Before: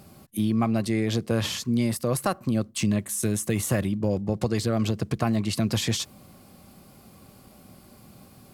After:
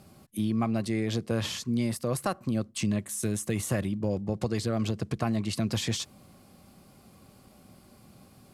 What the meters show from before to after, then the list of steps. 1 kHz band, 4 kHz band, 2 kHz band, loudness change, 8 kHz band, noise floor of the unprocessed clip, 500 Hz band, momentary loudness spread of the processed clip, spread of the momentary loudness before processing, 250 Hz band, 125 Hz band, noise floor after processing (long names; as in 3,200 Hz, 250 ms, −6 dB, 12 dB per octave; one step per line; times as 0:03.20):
−4.0 dB, −4.0 dB, −4.0 dB, −4.0 dB, −4.5 dB, −52 dBFS, −4.0 dB, 3 LU, 3 LU, −4.0 dB, −4.0 dB, −57 dBFS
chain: low-pass filter 12,000 Hz 12 dB per octave
level −4 dB